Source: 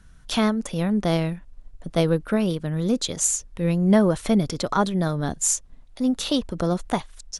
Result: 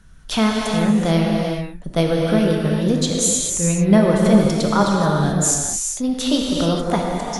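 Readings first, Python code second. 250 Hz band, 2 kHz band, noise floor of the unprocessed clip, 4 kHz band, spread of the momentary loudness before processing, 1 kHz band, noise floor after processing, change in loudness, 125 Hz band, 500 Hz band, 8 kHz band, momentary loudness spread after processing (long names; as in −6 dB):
+5.5 dB, +6.0 dB, −48 dBFS, +5.5 dB, 8 LU, +6.0 dB, −36 dBFS, +5.0 dB, +5.5 dB, +5.5 dB, +6.0 dB, 7 LU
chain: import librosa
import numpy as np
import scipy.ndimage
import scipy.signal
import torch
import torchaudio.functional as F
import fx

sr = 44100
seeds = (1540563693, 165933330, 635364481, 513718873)

y = fx.rev_gated(x, sr, seeds[0], gate_ms=460, shape='flat', drr_db=-1.5)
y = F.gain(torch.from_numpy(y), 2.0).numpy()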